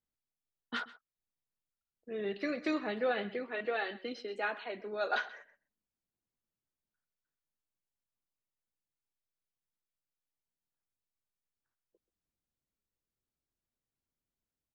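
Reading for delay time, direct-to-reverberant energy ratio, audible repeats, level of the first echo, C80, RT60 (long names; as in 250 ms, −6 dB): 131 ms, no reverb audible, 1, −19.0 dB, no reverb audible, no reverb audible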